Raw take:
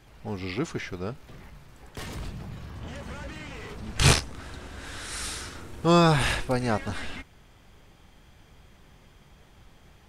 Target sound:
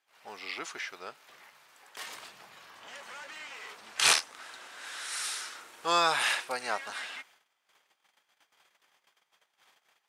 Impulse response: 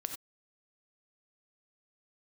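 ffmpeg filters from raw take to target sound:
-af "agate=range=0.141:threshold=0.00282:ratio=16:detection=peak,highpass=890"

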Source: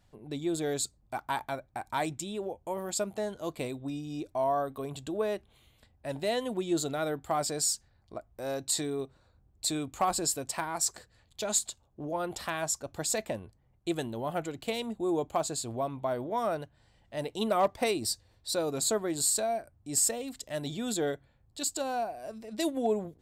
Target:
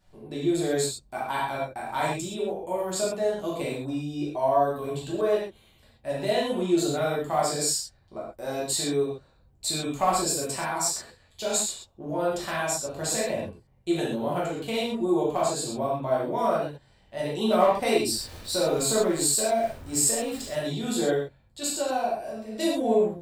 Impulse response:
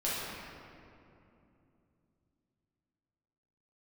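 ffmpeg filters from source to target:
-filter_complex "[0:a]asettb=1/sr,asplit=3[s0][s1][s2];[s0]atrim=end=18.124[s3];[s1]atrim=start=18.12:end=20.55,asetpts=PTS-STARTPTS,afade=t=in:d=0.004:c=qsin,afade=t=out:st=2.426:d=0.004:c=qsin,aeval=exprs='val(0)+0.5*0.00794*sgn(val(0))':c=same[s4];[s2]atrim=start=20.546[s5];[s3][s4]acrossfade=d=0.004:c1=hsin:c2=qsin[s6];[s6][s5]acrossfade=d=0.004:c1=qsin:c2=hsin[s7];[1:a]atrim=start_sample=2205,atrim=end_sample=6174[s8];[s7][s8]afir=irnorm=-1:irlink=0"

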